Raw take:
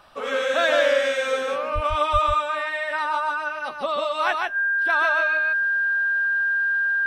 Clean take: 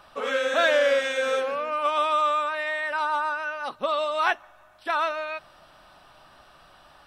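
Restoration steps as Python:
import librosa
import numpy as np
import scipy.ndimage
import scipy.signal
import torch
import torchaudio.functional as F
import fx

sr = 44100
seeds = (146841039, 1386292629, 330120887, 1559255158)

y = fx.notch(x, sr, hz=1600.0, q=30.0)
y = fx.fix_deplosive(y, sr, at_s=(1.74, 2.12))
y = fx.fix_echo_inverse(y, sr, delay_ms=148, level_db=-3.0)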